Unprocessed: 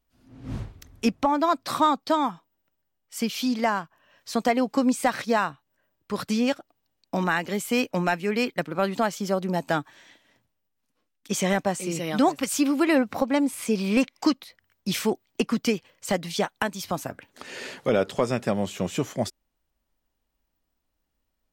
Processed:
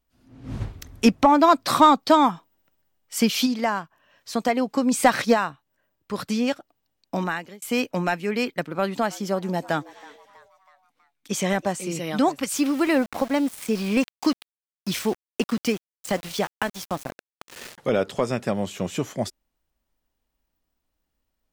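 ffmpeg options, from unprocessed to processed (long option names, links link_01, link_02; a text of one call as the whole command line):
ffmpeg -i in.wav -filter_complex "[0:a]asplit=3[link_01][link_02][link_03];[link_01]afade=type=out:start_time=0.6:duration=0.02[link_04];[link_02]acontrast=79,afade=type=in:start_time=0.6:duration=0.02,afade=type=out:start_time=3.45:duration=0.02[link_05];[link_03]afade=type=in:start_time=3.45:duration=0.02[link_06];[link_04][link_05][link_06]amix=inputs=3:normalize=0,asplit=3[link_07][link_08][link_09];[link_07]afade=type=out:start_time=4.91:duration=0.02[link_10];[link_08]acontrast=69,afade=type=in:start_time=4.91:duration=0.02,afade=type=out:start_time=5.33:duration=0.02[link_11];[link_09]afade=type=in:start_time=5.33:duration=0.02[link_12];[link_10][link_11][link_12]amix=inputs=3:normalize=0,asettb=1/sr,asplit=3[link_13][link_14][link_15];[link_13]atrim=end=8.724[link_16];[link_14]atrim=start=8.72:end=11.73,asetpts=PTS-STARTPTS,afade=type=in:duration=0.004:curve=qsin,afade=type=out:start_time=3.006:duration=0.004:curve=qsin,asplit=5[link_17][link_18][link_19][link_20][link_21];[link_18]adelay=323,afreqshift=140,volume=-21.5dB[link_22];[link_19]adelay=646,afreqshift=280,volume=-27.5dB[link_23];[link_20]adelay=969,afreqshift=420,volume=-33.5dB[link_24];[link_21]adelay=1292,afreqshift=560,volume=-39.6dB[link_25];[link_17][link_22][link_23][link_24][link_25]amix=inputs=5:normalize=0,atrim=end_sample=132741[link_26];[link_15]atrim=start=11.726[link_27];[link_16][link_26]acrossfade=duration=0.004:curve1=hsin:curve2=qsin[link_28];[link_28][link_27]acrossfade=duration=0.004:curve1=qsin:curve2=hsin,asettb=1/sr,asplit=3[link_29][link_30][link_31];[link_29]atrim=end=12.554[link_32];[link_30]atrim=start=12.55:end=17.78,asetpts=PTS-STARTPTS,afade=type=in:duration=0.004:curve=qsin,afade=type=out:start_time=5.226:duration=0.004:curve=qsin,aeval=exprs='val(0)*gte(abs(val(0)),0.0224)':channel_layout=same[link_33];[link_31]atrim=start=17.776[link_34];[link_32][link_33]acrossfade=duration=0.004:curve1=hsin:curve2=qsin[link_35];[link_35][link_34]acrossfade=duration=0.004:curve1=qsin:curve2=hsin,asplit=2[link_36][link_37];[link_36]atrim=end=7.62,asetpts=PTS-STARTPTS,afade=type=out:start_time=7.18:duration=0.44[link_38];[link_37]atrim=start=7.62,asetpts=PTS-STARTPTS,afade=type=in:duration=0.004:curve=hsin[link_39];[link_38][link_39]concat=n=2:v=0:a=1" out.wav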